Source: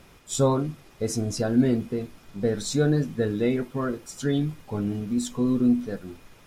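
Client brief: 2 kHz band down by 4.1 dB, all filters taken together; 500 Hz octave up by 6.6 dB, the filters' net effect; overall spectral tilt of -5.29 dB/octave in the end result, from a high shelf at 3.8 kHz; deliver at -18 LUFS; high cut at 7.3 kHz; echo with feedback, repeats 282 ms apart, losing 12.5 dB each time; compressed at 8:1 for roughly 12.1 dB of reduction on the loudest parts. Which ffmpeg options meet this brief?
-af "lowpass=7300,equalizer=f=500:t=o:g=8,equalizer=f=2000:t=o:g=-7,highshelf=f=3800:g=3,acompressor=threshold=0.0562:ratio=8,aecho=1:1:282|564|846:0.237|0.0569|0.0137,volume=4.22"

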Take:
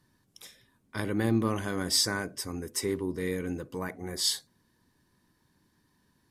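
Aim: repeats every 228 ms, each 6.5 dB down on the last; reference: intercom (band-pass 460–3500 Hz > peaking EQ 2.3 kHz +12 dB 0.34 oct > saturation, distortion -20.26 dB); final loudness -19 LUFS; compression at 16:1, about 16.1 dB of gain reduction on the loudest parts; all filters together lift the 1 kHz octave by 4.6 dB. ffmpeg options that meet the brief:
-af "equalizer=f=1000:t=o:g=5.5,acompressor=threshold=0.0141:ratio=16,highpass=460,lowpass=3500,equalizer=f=2300:t=o:w=0.34:g=12,aecho=1:1:228|456|684|912|1140|1368:0.473|0.222|0.105|0.0491|0.0231|0.0109,asoftclip=threshold=0.0282,volume=22.4"

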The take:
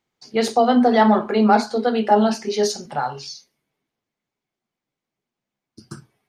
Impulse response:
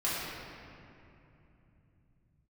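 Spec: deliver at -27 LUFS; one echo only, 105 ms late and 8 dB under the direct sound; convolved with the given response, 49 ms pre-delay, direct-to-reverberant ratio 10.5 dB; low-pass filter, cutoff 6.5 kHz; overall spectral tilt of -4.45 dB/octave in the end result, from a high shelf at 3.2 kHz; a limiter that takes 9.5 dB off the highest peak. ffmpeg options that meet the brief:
-filter_complex "[0:a]lowpass=6500,highshelf=f=3200:g=5,alimiter=limit=0.266:level=0:latency=1,aecho=1:1:105:0.398,asplit=2[s0][s1];[1:a]atrim=start_sample=2205,adelay=49[s2];[s1][s2]afir=irnorm=-1:irlink=0,volume=0.106[s3];[s0][s3]amix=inputs=2:normalize=0,volume=0.501"

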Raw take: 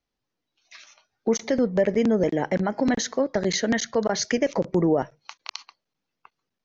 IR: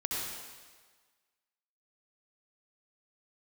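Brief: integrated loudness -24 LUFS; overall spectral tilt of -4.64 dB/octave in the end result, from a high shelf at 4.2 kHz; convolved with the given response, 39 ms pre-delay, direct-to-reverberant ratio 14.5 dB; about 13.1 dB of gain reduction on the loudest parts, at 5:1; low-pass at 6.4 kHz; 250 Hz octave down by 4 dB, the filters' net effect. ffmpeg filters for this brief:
-filter_complex "[0:a]lowpass=6400,equalizer=f=250:t=o:g=-5,highshelf=f=4200:g=-7.5,acompressor=threshold=0.02:ratio=5,asplit=2[s0][s1];[1:a]atrim=start_sample=2205,adelay=39[s2];[s1][s2]afir=irnorm=-1:irlink=0,volume=0.106[s3];[s0][s3]amix=inputs=2:normalize=0,volume=5.01"

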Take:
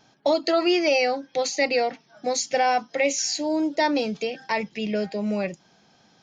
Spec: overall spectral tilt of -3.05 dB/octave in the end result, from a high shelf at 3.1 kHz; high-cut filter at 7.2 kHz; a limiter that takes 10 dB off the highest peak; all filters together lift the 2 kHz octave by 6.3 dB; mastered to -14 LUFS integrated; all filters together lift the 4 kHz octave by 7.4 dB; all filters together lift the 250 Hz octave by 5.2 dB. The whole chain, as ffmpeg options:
-af "lowpass=7200,equalizer=f=250:t=o:g=7,equalizer=f=2000:t=o:g=4,highshelf=f=3100:g=5,equalizer=f=4000:t=o:g=5,volume=2.99,alimiter=limit=0.562:level=0:latency=1"

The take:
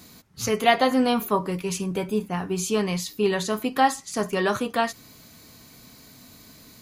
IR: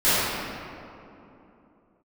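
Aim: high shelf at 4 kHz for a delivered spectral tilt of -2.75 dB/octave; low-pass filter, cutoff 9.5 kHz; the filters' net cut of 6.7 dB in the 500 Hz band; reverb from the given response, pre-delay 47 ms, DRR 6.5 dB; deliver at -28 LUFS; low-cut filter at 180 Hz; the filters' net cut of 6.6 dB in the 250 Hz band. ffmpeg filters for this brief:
-filter_complex "[0:a]highpass=180,lowpass=9500,equalizer=f=250:t=o:g=-4.5,equalizer=f=500:t=o:g=-7.5,highshelf=f=4000:g=3,asplit=2[s0][s1];[1:a]atrim=start_sample=2205,adelay=47[s2];[s1][s2]afir=irnorm=-1:irlink=0,volume=0.0422[s3];[s0][s3]amix=inputs=2:normalize=0,volume=0.891"

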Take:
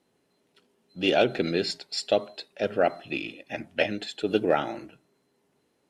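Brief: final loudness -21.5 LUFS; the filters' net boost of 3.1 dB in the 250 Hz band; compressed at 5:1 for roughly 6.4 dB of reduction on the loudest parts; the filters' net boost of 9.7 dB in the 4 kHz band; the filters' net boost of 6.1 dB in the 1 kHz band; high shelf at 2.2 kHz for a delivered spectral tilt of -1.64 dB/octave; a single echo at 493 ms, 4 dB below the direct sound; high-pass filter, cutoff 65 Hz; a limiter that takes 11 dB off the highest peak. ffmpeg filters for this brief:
-af "highpass=65,equalizer=f=250:t=o:g=3.5,equalizer=f=1000:t=o:g=8.5,highshelf=f=2200:g=3.5,equalizer=f=4000:t=o:g=8.5,acompressor=threshold=0.1:ratio=5,alimiter=limit=0.112:level=0:latency=1,aecho=1:1:493:0.631,volume=2.51"

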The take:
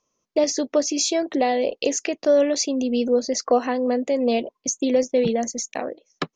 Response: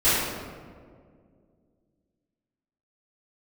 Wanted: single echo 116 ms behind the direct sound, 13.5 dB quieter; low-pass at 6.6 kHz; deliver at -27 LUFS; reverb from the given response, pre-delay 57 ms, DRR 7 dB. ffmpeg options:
-filter_complex "[0:a]lowpass=6600,aecho=1:1:116:0.211,asplit=2[s0][s1];[1:a]atrim=start_sample=2205,adelay=57[s2];[s1][s2]afir=irnorm=-1:irlink=0,volume=0.0562[s3];[s0][s3]amix=inputs=2:normalize=0,volume=0.531"

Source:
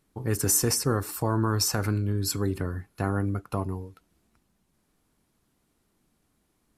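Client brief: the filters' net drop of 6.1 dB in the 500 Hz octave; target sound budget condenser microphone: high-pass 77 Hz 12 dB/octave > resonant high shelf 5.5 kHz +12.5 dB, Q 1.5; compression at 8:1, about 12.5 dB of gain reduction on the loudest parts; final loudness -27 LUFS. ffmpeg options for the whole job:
-af "equalizer=f=500:t=o:g=-8,acompressor=threshold=0.02:ratio=8,highpass=77,highshelf=f=5500:t=q:w=1.5:g=12.5,volume=1.26"

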